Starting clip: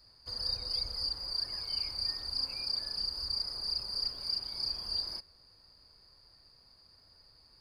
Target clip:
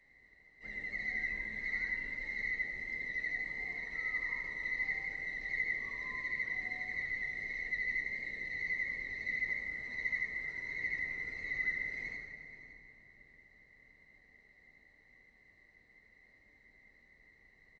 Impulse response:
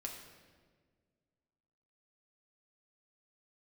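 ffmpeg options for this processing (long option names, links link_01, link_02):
-filter_complex "[0:a]highpass=55,aecho=1:1:241:0.168[link_01];[1:a]atrim=start_sample=2205[link_02];[link_01][link_02]afir=irnorm=-1:irlink=0,asetrate=18846,aresample=44100"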